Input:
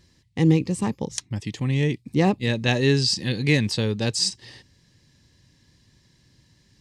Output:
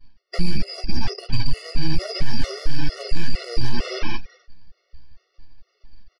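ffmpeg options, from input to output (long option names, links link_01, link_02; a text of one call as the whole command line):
ffmpeg -i in.wav -af "afftfilt=real='real(if(lt(b,920),b+92*(1-2*mod(floor(b/92),2)),b),0)':imag='imag(if(lt(b,920),b+92*(1-2*mod(floor(b/92),2)),b),0)':win_size=2048:overlap=0.75,aresample=11025,aeval=exprs='abs(val(0))':channel_layout=same,aresample=44100,asetrate=48510,aresample=44100,afftdn=noise_reduction=16:noise_floor=-44,agate=range=-33dB:threshold=-60dB:ratio=3:detection=peak,acompressor=threshold=-25dB:ratio=5,lowpass=frequency=2300:poles=1,aecho=1:1:169.1|262.4:0.316|0.355,flanger=delay=6.9:depth=8.4:regen=8:speed=0.69:shape=triangular,asoftclip=type=tanh:threshold=-29.5dB,alimiter=level_in=33dB:limit=-1dB:release=50:level=0:latency=1,afftfilt=real='re*gt(sin(2*PI*2.2*pts/sr)*(1-2*mod(floor(b*sr/1024/370),2)),0)':imag='im*gt(sin(2*PI*2.2*pts/sr)*(1-2*mod(floor(b*sr/1024/370),2)),0)':win_size=1024:overlap=0.75,volume=-6dB" out.wav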